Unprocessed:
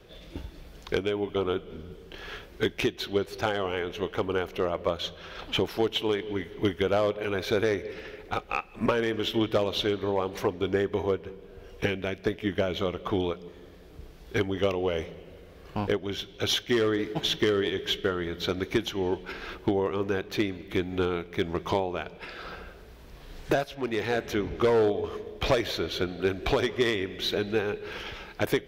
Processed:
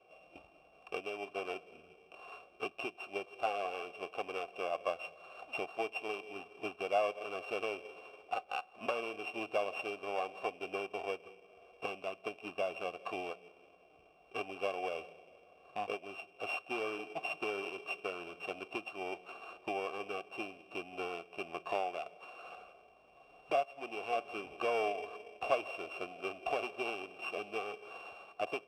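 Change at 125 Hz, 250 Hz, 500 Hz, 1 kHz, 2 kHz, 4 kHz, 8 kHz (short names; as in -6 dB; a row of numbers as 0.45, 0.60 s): -27.0, -18.5, -11.5, -4.0, -7.5, -15.0, -16.0 dB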